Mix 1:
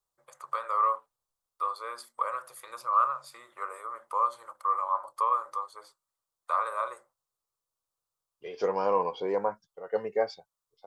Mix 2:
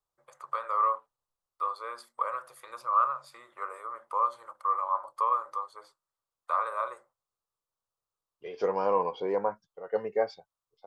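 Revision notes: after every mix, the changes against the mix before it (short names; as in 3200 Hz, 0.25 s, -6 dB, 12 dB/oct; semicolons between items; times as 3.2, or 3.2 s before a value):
master: add high shelf 4900 Hz -8.5 dB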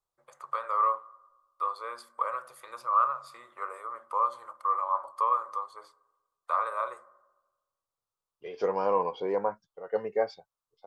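reverb: on, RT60 1.2 s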